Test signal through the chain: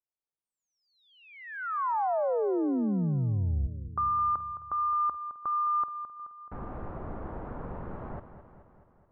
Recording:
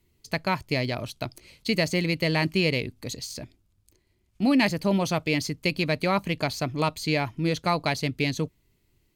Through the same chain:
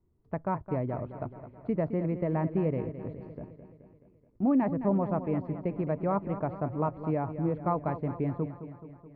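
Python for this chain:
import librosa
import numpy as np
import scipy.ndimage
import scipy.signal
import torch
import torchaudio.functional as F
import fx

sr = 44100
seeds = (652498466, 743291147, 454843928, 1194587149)

y = scipy.signal.sosfilt(scipy.signal.butter(4, 1200.0, 'lowpass', fs=sr, output='sos'), x)
y = fx.echo_feedback(y, sr, ms=214, feedback_pct=60, wet_db=-11.5)
y = y * librosa.db_to_amplitude(-3.5)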